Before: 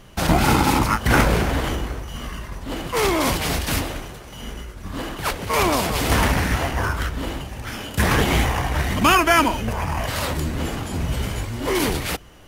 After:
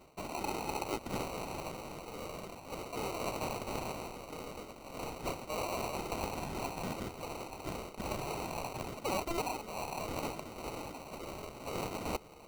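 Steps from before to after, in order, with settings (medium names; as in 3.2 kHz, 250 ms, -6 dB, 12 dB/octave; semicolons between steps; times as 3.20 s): reverse; compression 5:1, threshold -30 dBFS, peak gain reduction 17 dB; reverse; high-pass 650 Hz 12 dB/octave; sample-rate reducer 1.7 kHz, jitter 0%; trim -2 dB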